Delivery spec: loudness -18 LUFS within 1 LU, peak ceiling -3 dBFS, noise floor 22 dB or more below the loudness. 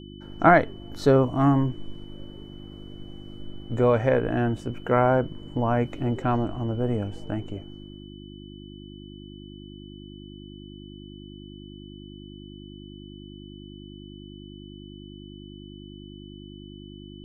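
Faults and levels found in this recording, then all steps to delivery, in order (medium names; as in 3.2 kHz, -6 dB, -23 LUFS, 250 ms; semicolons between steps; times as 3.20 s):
hum 50 Hz; highest harmonic 350 Hz; hum level -41 dBFS; steady tone 3 kHz; tone level -51 dBFS; loudness -24.0 LUFS; peak level -4.0 dBFS; loudness target -18.0 LUFS
-> de-hum 50 Hz, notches 7; band-stop 3 kHz, Q 30; trim +6 dB; peak limiter -3 dBFS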